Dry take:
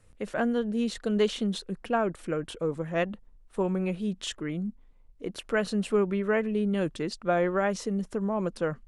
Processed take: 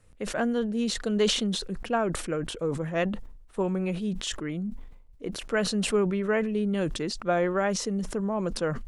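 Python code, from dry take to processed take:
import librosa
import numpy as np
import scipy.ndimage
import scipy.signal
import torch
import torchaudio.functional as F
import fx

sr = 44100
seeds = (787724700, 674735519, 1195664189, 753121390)

y = fx.dynamic_eq(x, sr, hz=6000.0, q=1.1, threshold_db=-54.0, ratio=4.0, max_db=4)
y = fx.sustainer(y, sr, db_per_s=63.0)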